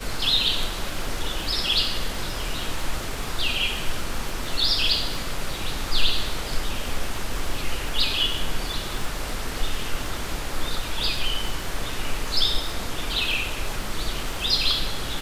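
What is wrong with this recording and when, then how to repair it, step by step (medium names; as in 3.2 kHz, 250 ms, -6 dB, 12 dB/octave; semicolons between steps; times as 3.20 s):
crackle 45 per s -30 dBFS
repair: de-click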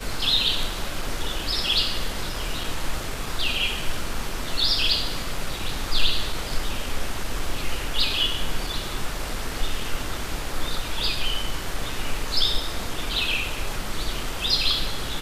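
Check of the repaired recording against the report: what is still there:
nothing left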